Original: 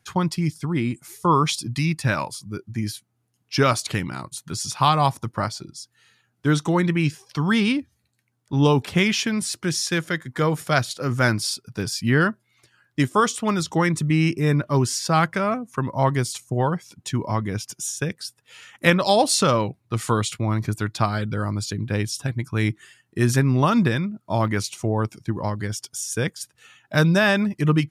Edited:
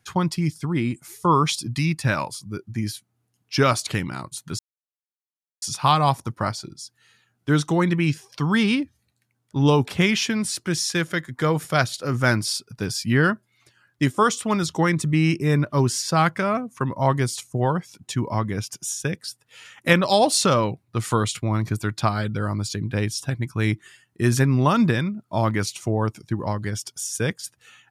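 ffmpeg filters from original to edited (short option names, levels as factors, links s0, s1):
-filter_complex "[0:a]asplit=2[s0][s1];[s0]atrim=end=4.59,asetpts=PTS-STARTPTS,afade=t=out:st=4.586:d=0.004:c=hsin,apad=pad_dur=1.03[s2];[s1]atrim=start=4.59,asetpts=PTS-STARTPTS,afade=t=in:d=0.004:c=hsin[s3];[s2][s3]concat=n=2:v=0:a=1"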